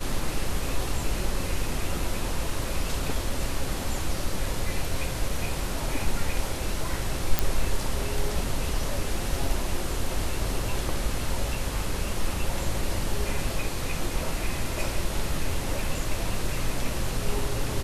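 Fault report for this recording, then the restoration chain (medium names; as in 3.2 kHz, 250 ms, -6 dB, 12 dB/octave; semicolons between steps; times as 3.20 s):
7.39 s: pop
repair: de-click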